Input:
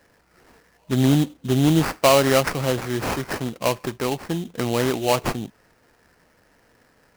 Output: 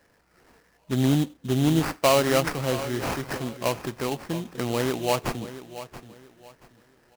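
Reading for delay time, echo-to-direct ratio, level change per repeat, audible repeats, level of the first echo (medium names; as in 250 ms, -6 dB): 679 ms, -13.5 dB, -11.0 dB, 2, -14.0 dB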